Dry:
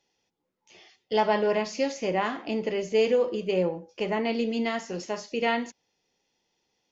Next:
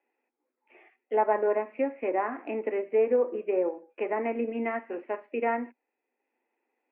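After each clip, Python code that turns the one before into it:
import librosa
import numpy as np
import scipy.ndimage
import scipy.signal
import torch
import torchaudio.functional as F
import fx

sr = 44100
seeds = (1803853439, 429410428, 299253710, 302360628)

y = scipy.signal.sosfilt(scipy.signal.cheby1(5, 1.0, [240.0, 2500.0], 'bandpass', fs=sr, output='sos'), x)
y = fx.transient(y, sr, attack_db=0, sustain_db=-4)
y = fx.env_lowpass_down(y, sr, base_hz=1600.0, full_db=-24.0)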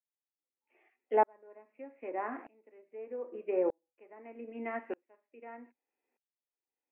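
y = fx.tremolo_decay(x, sr, direction='swelling', hz=0.81, depth_db=37)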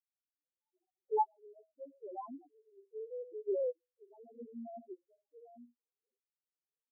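y = fx.level_steps(x, sr, step_db=11)
y = fx.spec_topn(y, sr, count=1)
y = scipy.signal.sosfilt(scipy.signal.cheby1(6, 3, 1500.0, 'lowpass', fs=sr, output='sos'), y)
y = y * 10.0 ** (8.0 / 20.0)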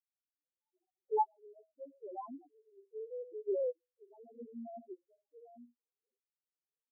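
y = x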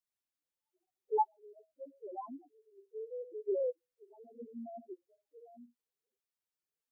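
y = fx.spec_quant(x, sr, step_db=15)
y = y * 10.0 ** (1.0 / 20.0)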